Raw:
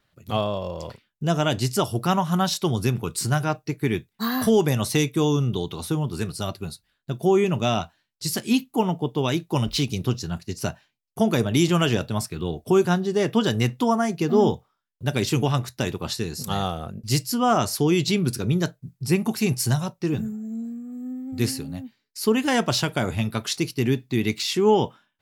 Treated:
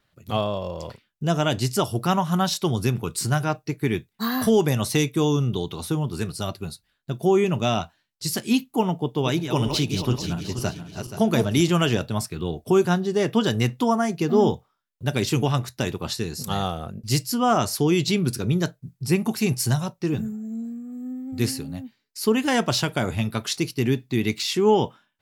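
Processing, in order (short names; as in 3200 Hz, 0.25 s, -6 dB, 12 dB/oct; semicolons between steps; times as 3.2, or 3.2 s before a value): 8.92–11.61 regenerating reverse delay 0.239 s, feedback 59%, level -7 dB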